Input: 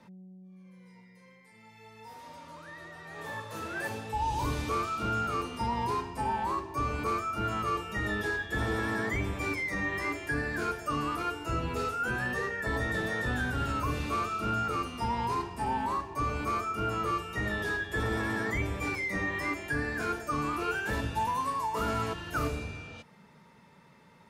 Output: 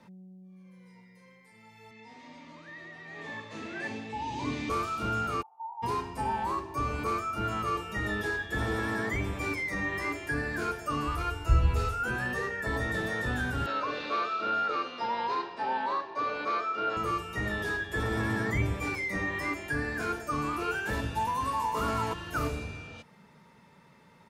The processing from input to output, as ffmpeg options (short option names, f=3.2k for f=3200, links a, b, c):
-filter_complex "[0:a]asettb=1/sr,asplit=3[a][b][c];[a]atrim=end=1.914[d];[b]atrim=start=1.91:end=4.7,asetpts=PTS-STARTPTS,afade=t=in:d=0.004:c=qsin,afade=t=out:st=2.786:d=0.004:c=qsin,highpass=140,equalizer=f=250:t=q:w=4:g=9,equalizer=f=520:t=q:w=4:g=-6,equalizer=f=920:t=q:w=4:g=-5,equalizer=f=1.4k:t=q:w=4:g=-9,equalizer=f=2.1k:t=q:w=4:g=7,equalizer=f=5.4k:t=q:w=4:g=-4,lowpass=f=6.4k:w=0.5412,lowpass=f=6.4k:w=1.3066[e];[c]atrim=start=4.696[f];[d][e]acrossfade=d=0.004:c1=hsin:c2=qsin[g];[g][f]acrossfade=d=0.004:c1=qsin:c2=hsin,asplit=3[h][i][j];[h]afade=t=out:st=5.41:d=0.02[k];[i]asuperpass=centerf=840:order=4:qfactor=7.9,afade=t=in:st=5.41:d=0.02,afade=t=out:st=5.82:d=0.02[l];[j]afade=t=in:st=5.82:d=0.02[m];[k][l][m]amix=inputs=3:normalize=0,asplit=3[n][o][p];[n]afade=t=out:st=11.07:d=0.02[q];[o]asubboost=boost=10.5:cutoff=71,afade=t=in:st=11.07:d=0.02,afade=t=out:st=12.02:d=0.02[r];[p]afade=t=in:st=12.02:d=0.02[s];[q][r][s]amix=inputs=3:normalize=0,asettb=1/sr,asplit=3[t][u][v];[t]atrim=end=13.664[w];[u]atrim=start=13.66:end=16.97,asetpts=PTS-STARTPTS,afade=t=in:d=0.004:c=qsin,afade=t=out:st=3.306:d=0.004:c=qsin,highpass=360,equalizer=f=540:t=q:w=4:g=8,equalizer=f=1.6k:t=q:w=4:g=6,equalizer=f=3.9k:t=q:w=4:g=8,lowpass=f=5k:w=0.5412,lowpass=f=5k:w=1.3066[x];[v]atrim=start=16.966[y];[w][x]acrossfade=d=0.004:c1=hsin:c2=qsin[z];[z][y]acrossfade=d=0.004:c1=qsin:c2=hsin,asettb=1/sr,asplit=3[aa][ab][ac];[aa]atrim=end=18.174[ad];[ab]atrim=start=18.17:end=18.74,asetpts=PTS-STARTPTS,afade=t=in:d=0.004:c=qsin,afade=t=out:st=0.566:d=0.004:c=qsin,equalizer=f=130:t=o:w=1.4:g=7[ae];[ac]atrim=start=18.736[af];[ad][ae]acrossfade=d=0.004:c1=hsin:c2=qsin[ag];[ag][af]acrossfade=d=0.004:c1=qsin:c2=hsin,asplit=2[ah][ai];[ai]afade=t=in:st=21.04:d=0.01,afade=t=out:st=21.76:d=0.01,aecho=0:1:370|740|1110:0.530884|0.0796327|0.0119449[aj];[ah][aj]amix=inputs=2:normalize=0"